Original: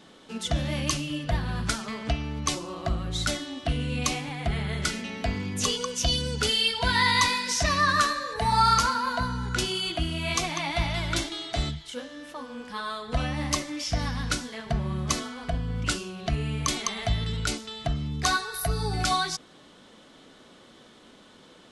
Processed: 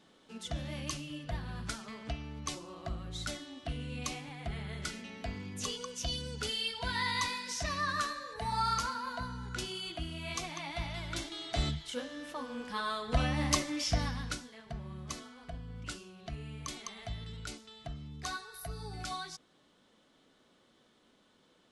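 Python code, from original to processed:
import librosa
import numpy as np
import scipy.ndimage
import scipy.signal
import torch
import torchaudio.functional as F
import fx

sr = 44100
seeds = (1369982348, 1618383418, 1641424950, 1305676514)

y = fx.gain(x, sr, db=fx.line((11.14, -11.0), (11.73, -2.0), (13.9, -2.0), (14.54, -14.5)))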